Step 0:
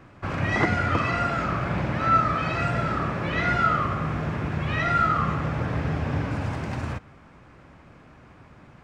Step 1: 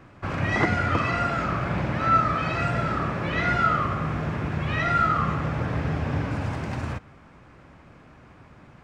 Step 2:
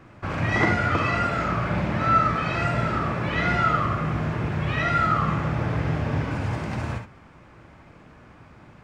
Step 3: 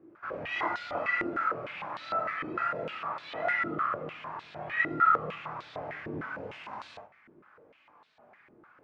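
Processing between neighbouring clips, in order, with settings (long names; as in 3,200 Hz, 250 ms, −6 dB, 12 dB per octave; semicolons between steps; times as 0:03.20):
no processing that can be heard
convolution reverb, pre-delay 3 ms, DRR 4.5 dB
multi-voice chorus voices 6, 0.25 Hz, delay 23 ms, depth 3.5 ms; band-pass on a step sequencer 6.6 Hz 350–3,900 Hz; level +4.5 dB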